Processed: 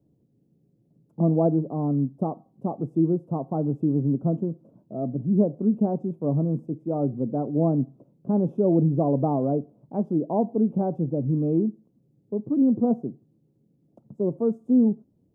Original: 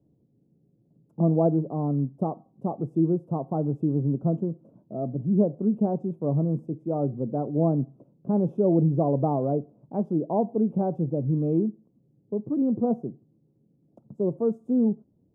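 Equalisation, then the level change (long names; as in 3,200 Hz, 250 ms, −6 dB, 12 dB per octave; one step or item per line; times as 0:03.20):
dynamic equaliser 260 Hz, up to +5 dB, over −39 dBFS, Q 3.7
0.0 dB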